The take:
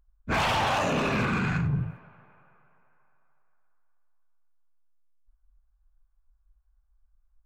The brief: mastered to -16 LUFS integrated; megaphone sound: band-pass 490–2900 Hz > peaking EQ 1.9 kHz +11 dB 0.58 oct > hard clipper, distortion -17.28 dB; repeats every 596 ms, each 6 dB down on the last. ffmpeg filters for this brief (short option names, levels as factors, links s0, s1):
-af "highpass=490,lowpass=2900,equalizer=f=1900:t=o:w=0.58:g=11,aecho=1:1:596|1192|1788|2384|2980|3576:0.501|0.251|0.125|0.0626|0.0313|0.0157,asoftclip=type=hard:threshold=0.1,volume=3.35"